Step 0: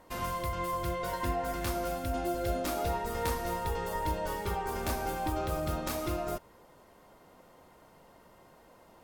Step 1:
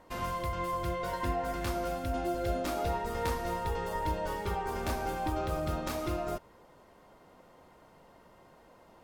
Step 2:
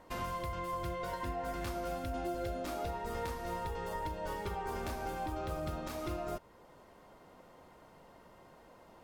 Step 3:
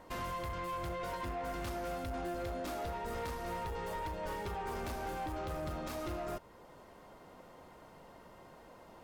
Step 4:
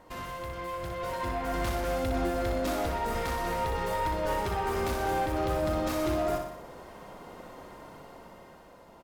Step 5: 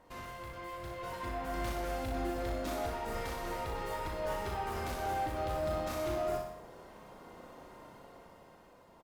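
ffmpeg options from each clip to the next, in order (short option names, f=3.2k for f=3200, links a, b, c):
-af "highshelf=f=8k:g=-8.5"
-af "alimiter=level_in=4.5dB:limit=-24dB:level=0:latency=1:release=416,volume=-4.5dB"
-af "asoftclip=type=tanh:threshold=-37dB,volume=2.5dB"
-af "dynaudnorm=f=220:g=11:m=8dB,aecho=1:1:61|122|183|244|305|366|427|488:0.501|0.291|0.169|0.0978|0.0567|0.0329|0.0191|0.0111"
-filter_complex "[0:a]asplit=2[a][b];[b]adelay=37,volume=-6dB[c];[a][c]amix=inputs=2:normalize=0,volume=-7dB" -ar 48000 -c:a libopus -b:a 48k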